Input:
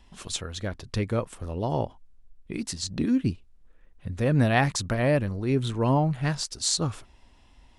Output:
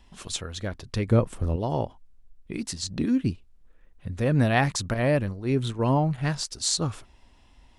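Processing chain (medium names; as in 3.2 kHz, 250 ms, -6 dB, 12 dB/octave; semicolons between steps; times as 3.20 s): 1.08–1.56 s: bass shelf 500 Hz +9.5 dB; 4.94–6.18 s: gate -29 dBFS, range -6 dB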